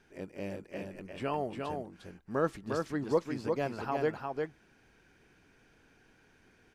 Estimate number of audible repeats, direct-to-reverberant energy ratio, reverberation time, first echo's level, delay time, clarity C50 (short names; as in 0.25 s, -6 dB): 1, none, none, -4.0 dB, 0.353 s, none